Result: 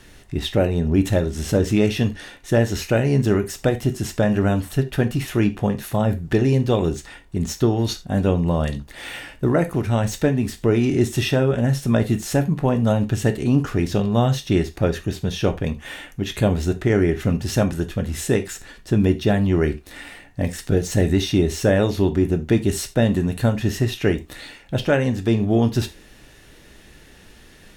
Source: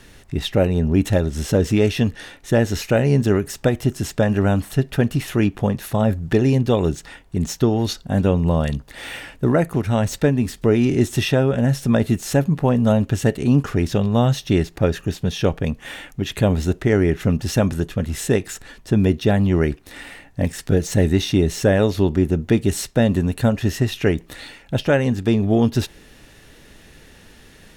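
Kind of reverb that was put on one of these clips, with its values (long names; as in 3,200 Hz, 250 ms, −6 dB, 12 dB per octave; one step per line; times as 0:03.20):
reverb whose tail is shaped and stops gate 110 ms falling, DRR 8 dB
level −1.5 dB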